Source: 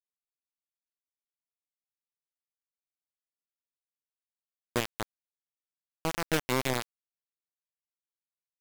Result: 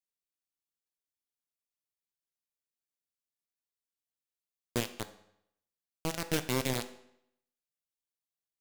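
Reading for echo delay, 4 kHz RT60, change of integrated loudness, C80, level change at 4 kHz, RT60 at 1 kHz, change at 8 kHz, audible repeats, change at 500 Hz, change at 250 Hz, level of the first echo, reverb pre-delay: none, 0.65 s, -2.5 dB, 15.5 dB, -2.0 dB, 0.75 s, 0.0 dB, none, -3.0 dB, -1.0 dB, none, 4 ms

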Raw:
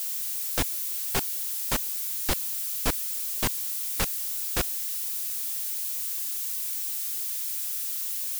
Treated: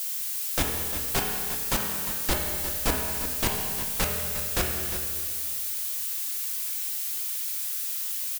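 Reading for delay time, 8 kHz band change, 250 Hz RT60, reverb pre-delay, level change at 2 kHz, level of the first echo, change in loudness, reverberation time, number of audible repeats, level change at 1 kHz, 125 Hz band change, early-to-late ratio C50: 0.353 s, +0.5 dB, 2.1 s, 5 ms, +3.5 dB, -10.5 dB, +0.5 dB, 2.1 s, 1, +3.5 dB, +4.0 dB, 1.5 dB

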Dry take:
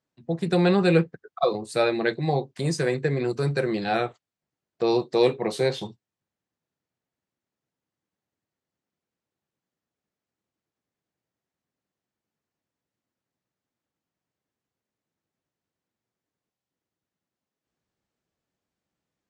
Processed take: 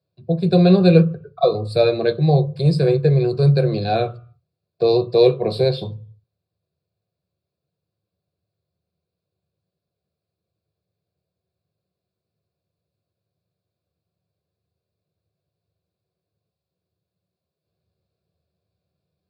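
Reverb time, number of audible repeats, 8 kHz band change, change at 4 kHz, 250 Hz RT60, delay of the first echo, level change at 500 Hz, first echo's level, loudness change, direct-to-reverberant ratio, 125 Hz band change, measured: 0.45 s, none, under -10 dB, +4.5 dB, 0.45 s, none, +6.5 dB, none, +7.0 dB, 9.5 dB, +11.0 dB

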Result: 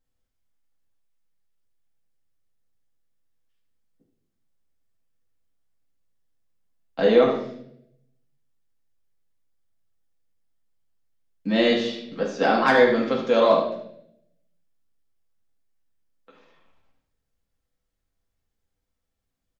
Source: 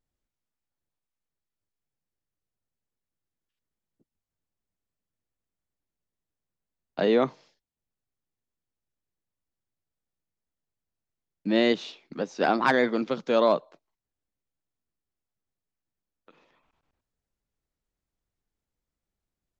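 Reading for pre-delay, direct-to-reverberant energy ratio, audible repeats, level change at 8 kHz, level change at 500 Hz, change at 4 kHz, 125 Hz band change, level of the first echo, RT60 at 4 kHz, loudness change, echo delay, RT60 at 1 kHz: 4 ms, -2.5 dB, 1, n/a, +5.5 dB, +4.5 dB, +4.0 dB, -7.5 dB, 0.70 s, +4.5 dB, 75 ms, 0.60 s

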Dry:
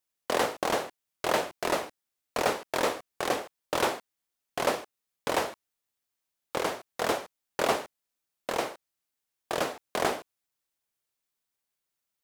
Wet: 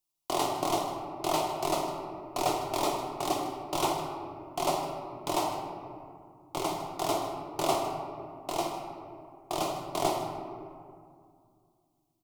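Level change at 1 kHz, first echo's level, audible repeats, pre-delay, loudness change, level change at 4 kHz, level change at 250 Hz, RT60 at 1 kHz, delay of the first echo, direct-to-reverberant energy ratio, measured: +1.5 dB, -14.5 dB, 1, 3 ms, -1.5 dB, -1.0 dB, +2.5 dB, 2.2 s, 0.155 s, 1.5 dB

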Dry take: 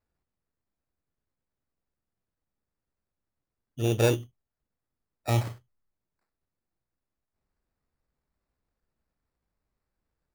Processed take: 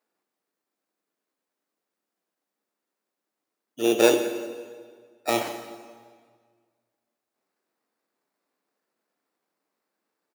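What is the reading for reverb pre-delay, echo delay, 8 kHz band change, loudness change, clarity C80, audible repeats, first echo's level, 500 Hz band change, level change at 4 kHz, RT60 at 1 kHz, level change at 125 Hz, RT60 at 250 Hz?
6 ms, 0.177 s, +7.0 dB, +3.0 dB, 9.5 dB, 1, -19.0 dB, +7.0 dB, +7.0 dB, 1.7 s, -19.5 dB, 1.8 s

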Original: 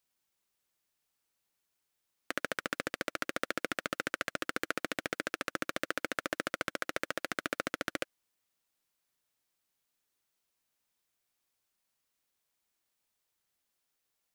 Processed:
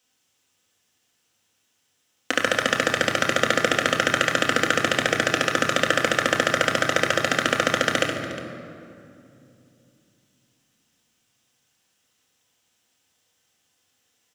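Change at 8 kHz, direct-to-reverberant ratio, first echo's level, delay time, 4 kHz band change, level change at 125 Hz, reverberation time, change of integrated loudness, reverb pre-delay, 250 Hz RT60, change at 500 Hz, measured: +16.0 dB, 0.0 dB, -8.0 dB, 69 ms, +17.5 dB, +20.0 dB, 2.6 s, +15.0 dB, 3 ms, 4.1 s, +16.0 dB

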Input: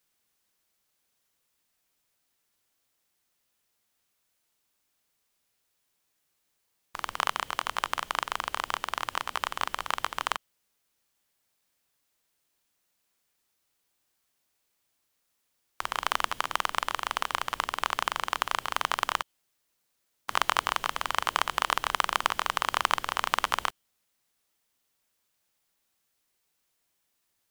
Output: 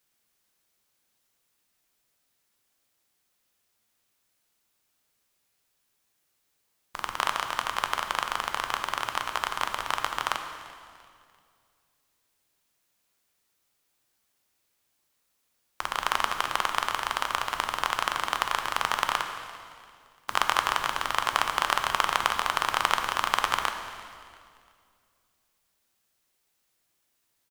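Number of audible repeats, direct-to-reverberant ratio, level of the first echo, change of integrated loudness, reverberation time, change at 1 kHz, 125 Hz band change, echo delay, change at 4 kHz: 2, 5.5 dB, -21.0 dB, +2.0 dB, 2.2 s, +2.0 dB, +2.5 dB, 0.343 s, +2.0 dB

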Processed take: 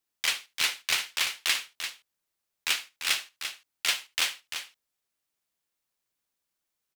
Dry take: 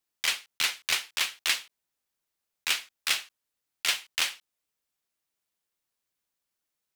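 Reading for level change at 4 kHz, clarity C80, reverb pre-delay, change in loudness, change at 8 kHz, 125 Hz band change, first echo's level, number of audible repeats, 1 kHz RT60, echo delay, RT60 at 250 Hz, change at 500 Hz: +0.5 dB, none, none, -0.5 dB, +0.5 dB, n/a, -19.5 dB, 2, none, 74 ms, none, +0.5 dB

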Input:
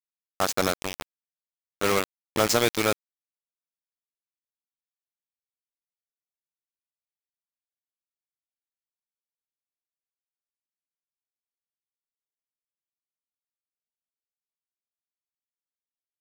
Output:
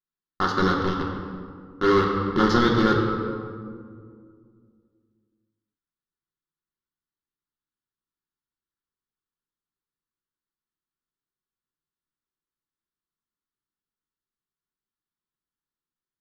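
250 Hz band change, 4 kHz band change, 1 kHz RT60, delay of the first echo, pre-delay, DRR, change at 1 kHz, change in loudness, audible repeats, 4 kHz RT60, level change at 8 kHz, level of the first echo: +10.0 dB, -2.0 dB, 1.9 s, none, 3 ms, -2.0 dB, +6.0 dB, +3.0 dB, none, 1.1 s, under -15 dB, none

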